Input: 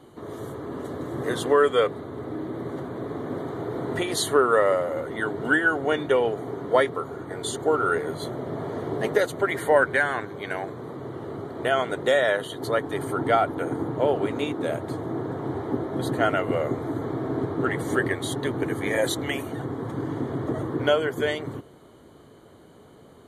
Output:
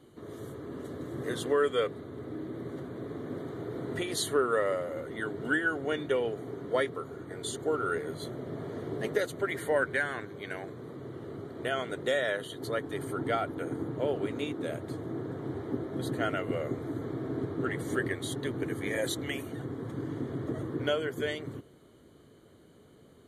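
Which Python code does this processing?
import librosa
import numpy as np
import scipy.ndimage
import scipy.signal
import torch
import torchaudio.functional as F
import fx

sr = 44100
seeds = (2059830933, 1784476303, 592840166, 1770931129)

y = fx.peak_eq(x, sr, hz=870.0, db=-8.0, octaves=1.0)
y = y * 10.0 ** (-5.5 / 20.0)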